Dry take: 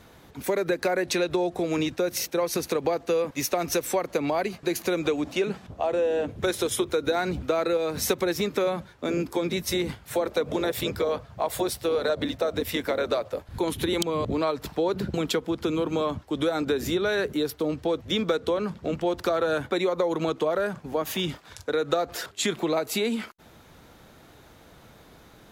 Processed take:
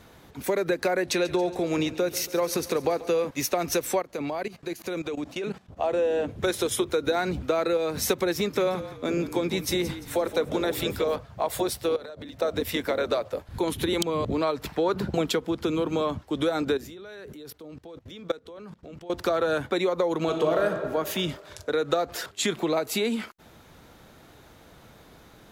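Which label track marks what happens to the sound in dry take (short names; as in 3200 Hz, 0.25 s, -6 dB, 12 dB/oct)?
1.000000	3.290000	feedback echo 0.139 s, feedback 60%, level -17 dB
4.000000	5.770000	level quantiser steps of 15 dB
8.360000	11.160000	frequency-shifting echo 0.172 s, feedback 37%, per repeat -40 Hz, level -12.5 dB
11.960000	12.420000	compressor 16:1, threshold -36 dBFS
14.630000	15.220000	bell 2500 Hz -> 600 Hz +7.5 dB
16.770000	19.100000	level quantiser steps of 21 dB
20.180000	20.650000	reverb throw, RT60 2 s, DRR 3 dB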